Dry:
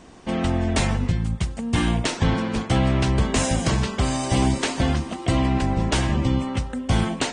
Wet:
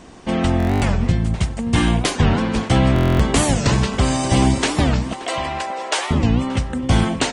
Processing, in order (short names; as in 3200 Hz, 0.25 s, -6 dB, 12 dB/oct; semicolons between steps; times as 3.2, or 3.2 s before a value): 5.13–6.12 HPF 490 Hz 24 dB/oct; outdoor echo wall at 99 m, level -15 dB; stuck buffer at 0.58/2.94, samples 1024, times 10; record warp 45 rpm, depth 250 cents; gain +4.5 dB